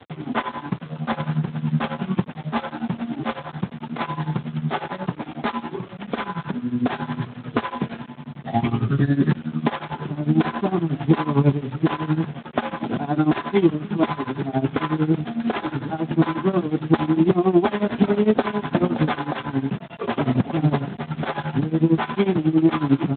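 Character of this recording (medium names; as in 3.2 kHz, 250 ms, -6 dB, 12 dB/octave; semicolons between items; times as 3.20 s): a buzz of ramps at a fixed pitch in blocks of 8 samples; tremolo triangle 11 Hz, depth 95%; a quantiser's noise floor 8-bit, dither none; Speex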